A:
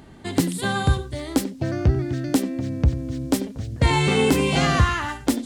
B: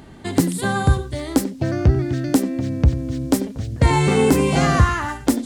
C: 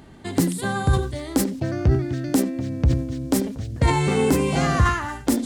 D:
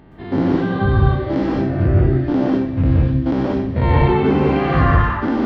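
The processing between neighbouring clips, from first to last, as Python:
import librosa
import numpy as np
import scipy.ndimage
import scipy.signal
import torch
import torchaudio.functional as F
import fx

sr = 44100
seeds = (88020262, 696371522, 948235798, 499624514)

y1 = fx.dynamic_eq(x, sr, hz=3200.0, q=1.2, threshold_db=-41.0, ratio=4.0, max_db=-8)
y1 = F.gain(torch.from_numpy(y1), 3.5).numpy()
y2 = fx.sustainer(y1, sr, db_per_s=85.0)
y2 = F.gain(torch.from_numpy(y2), -4.0).numpy()
y3 = fx.spec_dilate(y2, sr, span_ms=120)
y3 = scipy.ndimage.gaussian_filter1d(y3, 2.9, mode='constant')
y3 = fx.rev_plate(y3, sr, seeds[0], rt60_s=0.56, hf_ratio=0.9, predelay_ms=110, drr_db=-3.0)
y3 = F.gain(torch.from_numpy(y3), -3.5).numpy()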